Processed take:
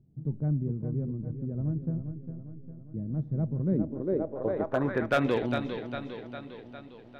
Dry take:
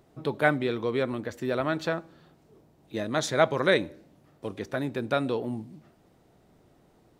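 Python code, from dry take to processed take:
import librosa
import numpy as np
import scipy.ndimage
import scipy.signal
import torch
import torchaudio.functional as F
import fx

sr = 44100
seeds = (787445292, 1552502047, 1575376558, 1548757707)

p1 = fx.echo_feedback(x, sr, ms=404, feedback_pct=59, wet_db=-8.0)
p2 = fx.backlash(p1, sr, play_db=-21.0)
p3 = p1 + (p2 * 10.0 ** (-10.0 / 20.0))
p4 = fx.filter_sweep_lowpass(p3, sr, from_hz=160.0, to_hz=3300.0, start_s=3.61, end_s=5.43, q=1.7)
y = np.clip(p4, -10.0 ** (-16.5 / 20.0), 10.0 ** (-16.5 / 20.0))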